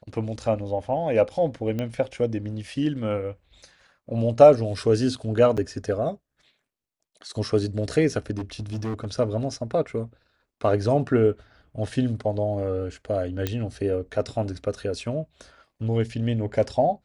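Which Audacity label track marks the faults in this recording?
1.790000	1.790000	click −17 dBFS
5.570000	5.580000	drop-out 6 ms
8.380000	9.070000	clipping −26 dBFS
13.470000	13.470000	click −11 dBFS

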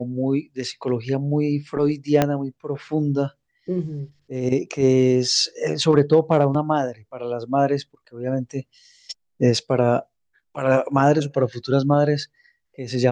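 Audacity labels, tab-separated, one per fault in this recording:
2.220000	2.220000	click −4 dBFS

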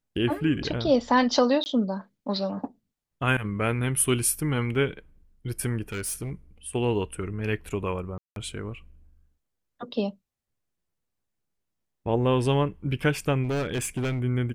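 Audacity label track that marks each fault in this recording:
1.640000	1.660000	drop-out 19 ms
5.920000	6.310000	clipping −27.5 dBFS
8.180000	8.360000	drop-out 182 ms
13.430000	14.220000	clipping −24 dBFS

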